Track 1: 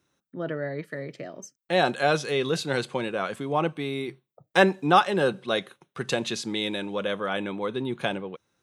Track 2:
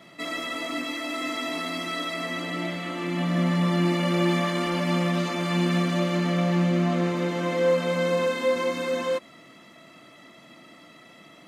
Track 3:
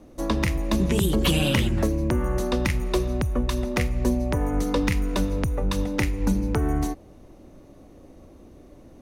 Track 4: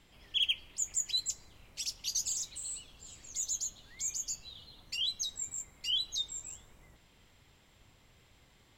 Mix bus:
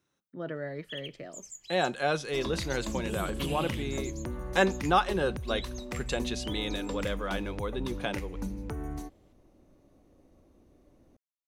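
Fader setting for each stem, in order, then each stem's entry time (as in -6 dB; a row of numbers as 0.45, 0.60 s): -5.5 dB, off, -13.0 dB, -13.0 dB; 0.00 s, off, 2.15 s, 0.55 s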